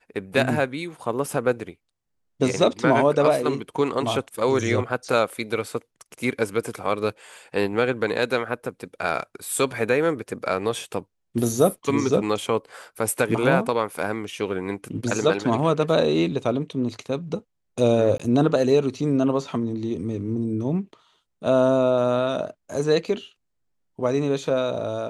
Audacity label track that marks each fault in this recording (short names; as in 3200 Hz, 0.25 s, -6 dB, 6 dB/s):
18.180000	18.200000	gap 15 ms